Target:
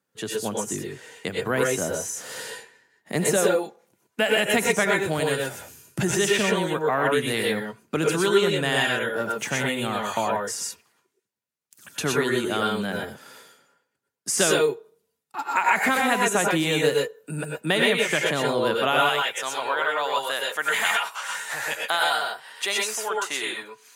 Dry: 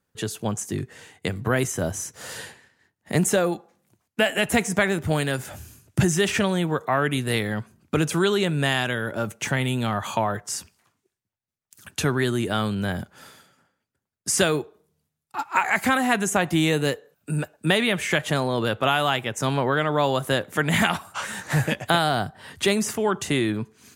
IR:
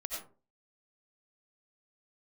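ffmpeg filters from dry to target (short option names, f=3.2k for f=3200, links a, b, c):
-filter_complex "[0:a]asetnsamples=n=441:p=0,asendcmd='19.09 highpass f 760',highpass=180[a];[1:a]atrim=start_sample=2205,atrim=end_sample=4410,asetrate=33075,aresample=44100[b];[a][b]afir=irnorm=-1:irlink=0"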